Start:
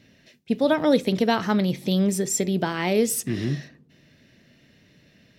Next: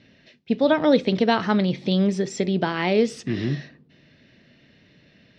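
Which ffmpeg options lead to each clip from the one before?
-af "lowpass=f=4.9k:w=0.5412,lowpass=f=4.9k:w=1.3066,lowshelf=f=140:g=-3,volume=2dB"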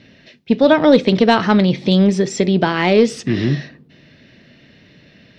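-af "acontrast=48,volume=2dB"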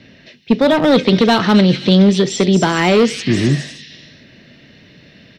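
-filter_complex "[0:a]acrossover=split=210|2400[a][b][c];[b]asoftclip=type=hard:threshold=-12.5dB[d];[c]aecho=1:1:260|416|509.6|565.8|599.5:0.631|0.398|0.251|0.158|0.1[e];[a][d][e]amix=inputs=3:normalize=0,volume=3dB"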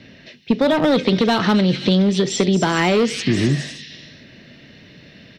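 -af "acompressor=threshold=-13dB:ratio=6"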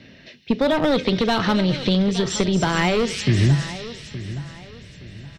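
-af "aecho=1:1:870|1740|2610:0.188|0.0622|0.0205,asubboost=boost=8.5:cutoff=95,volume=-2dB"

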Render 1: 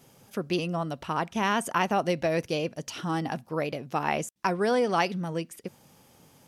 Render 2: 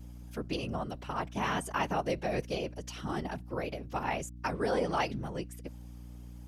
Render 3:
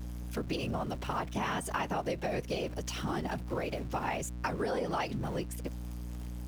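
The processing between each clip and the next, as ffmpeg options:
-af "afftfilt=real='hypot(re,im)*cos(2*PI*random(0))':imag='hypot(re,im)*sin(2*PI*random(1))':win_size=512:overlap=0.75,aeval=exprs='val(0)+0.00562*(sin(2*PI*60*n/s)+sin(2*PI*2*60*n/s)/2+sin(2*PI*3*60*n/s)/3+sin(2*PI*4*60*n/s)/4+sin(2*PI*5*60*n/s)/5)':c=same"
-af "aeval=exprs='val(0)+0.5*0.00473*sgn(val(0))':c=same,acompressor=threshold=-34dB:ratio=4,volume=3.5dB"

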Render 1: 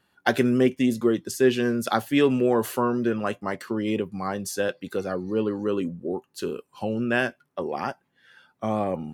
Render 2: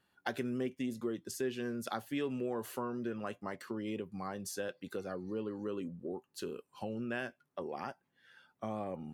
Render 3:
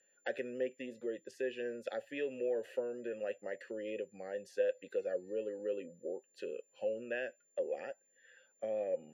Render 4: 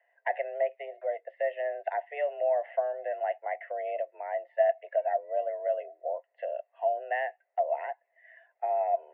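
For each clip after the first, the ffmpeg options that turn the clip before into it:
-af "acompressor=threshold=-32dB:ratio=2,volume=-7.5dB"
-filter_complex "[0:a]aeval=exprs='val(0)+0.002*sin(2*PI*7200*n/s)':c=same,asplit=3[a][b][c];[a]bandpass=f=530:t=q:w=8,volume=0dB[d];[b]bandpass=f=1.84k:t=q:w=8,volume=-6dB[e];[c]bandpass=f=2.48k:t=q:w=8,volume=-9dB[f];[d][e][f]amix=inputs=3:normalize=0,volume=10.5dB"
-af "highpass=f=350:t=q:w=0.5412,highpass=f=350:t=q:w=1.307,lowpass=f=2.1k:t=q:w=0.5176,lowpass=f=2.1k:t=q:w=0.7071,lowpass=f=2.1k:t=q:w=1.932,afreqshift=150,volume=8.5dB"

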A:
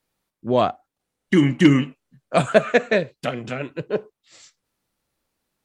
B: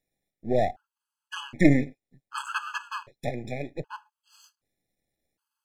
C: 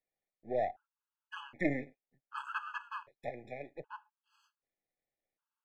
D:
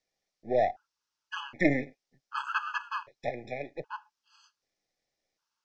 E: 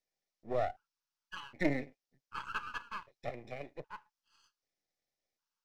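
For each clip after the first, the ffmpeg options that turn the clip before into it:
-af "aeval=exprs='if(lt(val(0),0),0.251*val(0),val(0))':c=same,afftfilt=real='re*gt(sin(2*PI*0.65*pts/sr)*(1-2*mod(floor(b*sr/1024/840),2)),0)':imag='im*gt(sin(2*PI*0.65*pts/sr)*(1-2*mod(floor(b*sr/1024/840),2)),0)':win_size=1024:overlap=0.75,volume=-1dB"
-filter_complex "[0:a]acrossover=split=430 2700:gain=0.251 1 0.126[a][b][c];[a][b][c]amix=inputs=3:normalize=0,volume=-6.5dB"
-af "lowpass=f=5.5k:t=q:w=3.3,volume=7dB"
-af "aeval=exprs='if(lt(val(0),0),0.447*val(0),val(0))':c=same,volume=-5.5dB"

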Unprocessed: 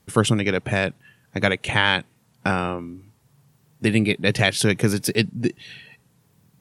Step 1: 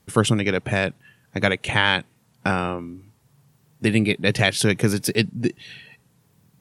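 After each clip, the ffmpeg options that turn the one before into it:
-af anull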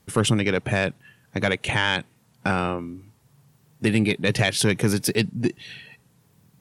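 -filter_complex "[0:a]asplit=2[a][b];[b]alimiter=limit=-10dB:level=0:latency=1,volume=-0.5dB[c];[a][c]amix=inputs=2:normalize=0,asoftclip=type=tanh:threshold=-3dB,volume=-5dB"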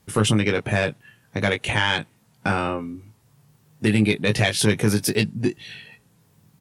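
-filter_complex "[0:a]asplit=2[a][b];[b]adelay=19,volume=-6dB[c];[a][c]amix=inputs=2:normalize=0"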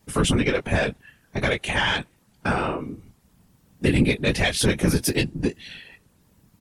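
-af "afftfilt=real='hypot(re,im)*cos(2*PI*random(0))':imag='hypot(re,im)*sin(2*PI*random(1))':win_size=512:overlap=0.75,volume=5dB"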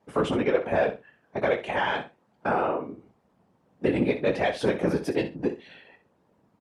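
-af "bandpass=f=630:t=q:w=1.1:csg=0,aecho=1:1:62|124:0.266|0.0479,volume=3dB"

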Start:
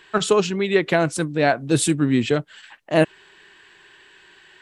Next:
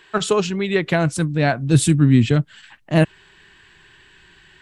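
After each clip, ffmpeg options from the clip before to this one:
-af "asubboost=boost=9:cutoff=180"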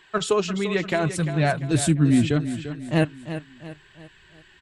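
-af "flanger=delay=0.9:depth=3.7:regen=-47:speed=0.74:shape=triangular,aecho=1:1:345|690|1035|1380:0.282|0.121|0.0521|0.0224"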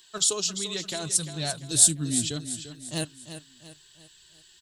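-af "aexciter=amount=10.9:drive=5.9:freq=3.4k,volume=-12dB"

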